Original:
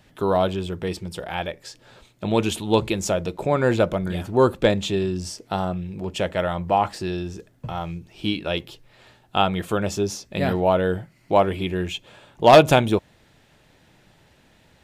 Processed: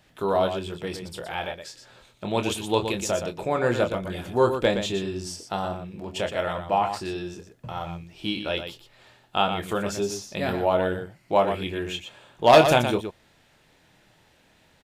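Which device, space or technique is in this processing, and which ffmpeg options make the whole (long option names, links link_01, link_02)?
slapback doubling: -filter_complex "[0:a]asplit=3[link_01][link_02][link_03];[link_02]adelay=25,volume=-7.5dB[link_04];[link_03]adelay=119,volume=-8dB[link_05];[link_01][link_04][link_05]amix=inputs=3:normalize=0,lowshelf=frequency=350:gain=-5.5,volume=-2.5dB"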